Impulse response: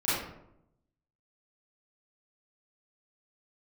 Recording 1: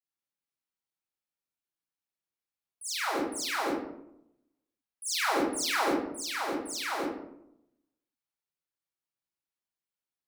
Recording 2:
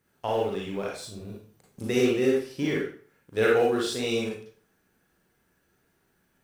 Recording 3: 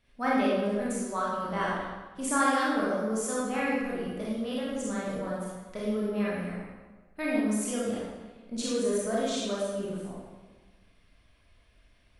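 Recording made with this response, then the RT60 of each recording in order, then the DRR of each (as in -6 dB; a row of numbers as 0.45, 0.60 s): 1; 0.80, 0.45, 1.3 s; -13.0, -4.0, -7.0 dB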